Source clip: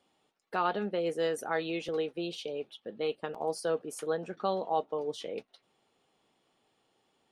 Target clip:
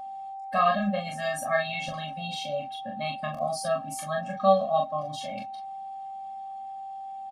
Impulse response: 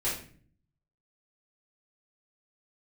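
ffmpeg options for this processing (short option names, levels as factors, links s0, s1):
-filter_complex "[0:a]aecho=1:1:26|40:0.501|0.631,asplit=2[s0][s1];[1:a]atrim=start_sample=2205[s2];[s1][s2]afir=irnorm=-1:irlink=0,volume=0.0355[s3];[s0][s3]amix=inputs=2:normalize=0,aeval=exprs='val(0)+0.00794*sin(2*PI*780*n/s)':c=same,afftfilt=real='re*eq(mod(floor(b*sr/1024/260),2),0)':imag='im*eq(mod(floor(b*sr/1024/260),2),0)':win_size=1024:overlap=0.75,volume=2.51"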